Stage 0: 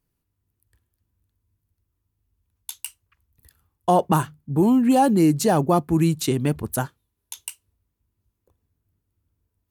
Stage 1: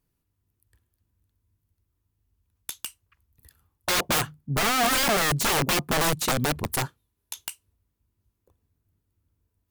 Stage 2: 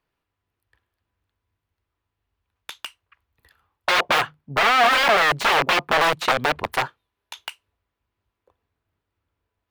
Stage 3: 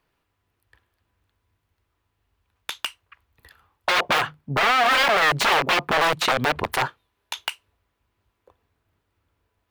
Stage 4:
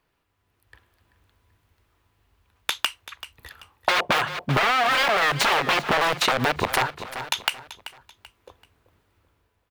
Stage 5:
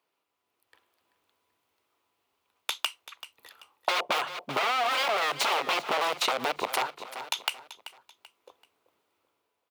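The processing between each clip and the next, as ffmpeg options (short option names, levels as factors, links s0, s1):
-af "aeval=exprs='(mod(7.94*val(0)+1,2)-1)/7.94':c=same"
-filter_complex "[0:a]acrossover=split=470 3800:gain=0.158 1 0.0891[s0][s1][s2];[s0][s1][s2]amix=inputs=3:normalize=0,volume=2.66"
-af "alimiter=level_in=5.96:limit=0.891:release=50:level=0:latency=1,volume=0.355"
-af "dynaudnorm=f=250:g=5:m=2.51,aecho=1:1:385|770|1155:0.141|0.048|0.0163,acompressor=threshold=0.126:ratio=6"
-af "highpass=370,equalizer=f=1700:w=3.6:g=-8,volume=0.596"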